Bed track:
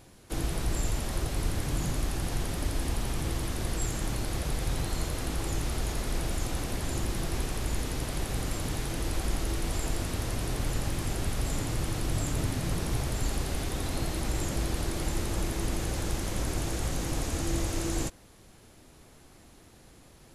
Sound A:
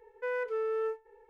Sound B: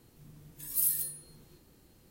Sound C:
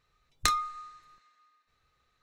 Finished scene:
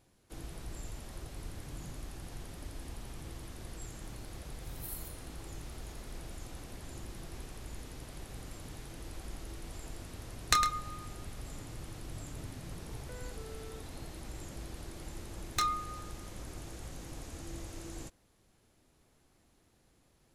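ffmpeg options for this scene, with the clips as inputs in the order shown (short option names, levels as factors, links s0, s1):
-filter_complex "[3:a]asplit=2[s0][s1];[0:a]volume=0.2[s2];[2:a]acompressor=mode=upward:threshold=0.00562:ratio=2.5:attack=40:release=67:knee=2.83:detection=peak[s3];[s0]aecho=1:1:106:0.355[s4];[1:a]acompressor=threshold=0.00447:ratio=6:attack=3.2:release=140:knee=1:detection=peak[s5];[s1]asoftclip=type=tanh:threshold=0.1[s6];[s3]atrim=end=2.1,asetpts=PTS-STARTPTS,volume=0.15,afade=t=in:d=0.004:c=hsin,afade=t=out:st=2.096:d=0.004:c=hsin,adelay=4060[s7];[s4]atrim=end=2.22,asetpts=PTS-STARTPTS,volume=0.944,afade=t=in:d=0.004:c=hsin,afade=t=out:st=2.216:d=0.004:c=hsin,adelay=10070[s8];[s5]atrim=end=1.29,asetpts=PTS-STARTPTS,volume=0.794,afade=t=in:d=0.004:c=hsin,afade=t=out:st=1.286:d=0.004:c=hsin,adelay=12870[s9];[s6]atrim=end=2.22,asetpts=PTS-STARTPTS,volume=0.794,afade=t=in:d=0.004:c=hsin,afade=t=out:st=2.216:d=0.004:c=hsin,adelay=15130[s10];[s2][s7][s8][s9][s10]amix=inputs=5:normalize=0"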